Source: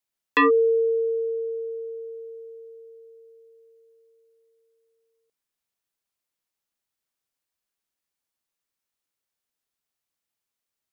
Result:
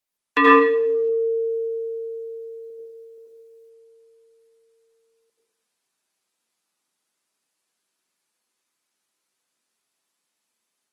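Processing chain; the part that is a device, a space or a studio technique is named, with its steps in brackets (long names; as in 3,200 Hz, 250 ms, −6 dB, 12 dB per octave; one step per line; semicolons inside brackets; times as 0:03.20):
0:02.70–0:03.18: high-pass filter 220 Hz 6 dB per octave
far-field microphone of a smart speaker (convolution reverb RT60 0.70 s, pre-delay 74 ms, DRR −3.5 dB; high-pass filter 160 Hz 24 dB per octave; automatic gain control gain up to 5 dB; Opus 24 kbit/s 48,000 Hz)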